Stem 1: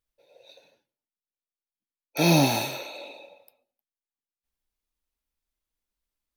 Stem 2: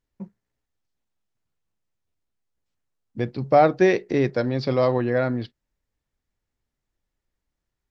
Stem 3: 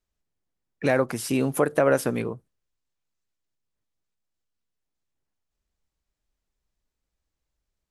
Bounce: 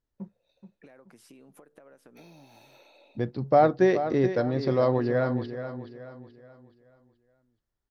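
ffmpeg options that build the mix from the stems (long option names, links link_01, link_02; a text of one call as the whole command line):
ffmpeg -i stem1.wav -i stem2.wav -i stem3.wav -filter_complex "[0:a]volume=-16.5dB[link_01];[1:a]deesser=0.7,equalizer=frequency=2400:width_type=o:width=0.46:gain=-7.5,volume=-3dB,asplit=3[link_02][link_03][link_04];[link_03]volume=-10.5dB[link_05];[2:a]highpass=190,acompressor=threshold=-25dB:ratio=6,volume=-17dB[link_06];[link_04]apad=whole_len=280694[link_07];[link_01][link_07]sidechaincompress=threshold=-41dB:ratio=8:attack=16:release=715[link_08];[link_08][link_06]amix=inputs=2:normalize=0,acompressor=threshold=-49dB:ratio=10,volume=0dB[link_09];[link_05]aecho=0:1:427|854|1281|1708|2135:1|0.39|0.152|0.0593|0.0231[link_10];[link_02][link_09][link_10]amix=inputs=3:normalize=0,highshelf=frequency=4700:gain=-6.5" out.wav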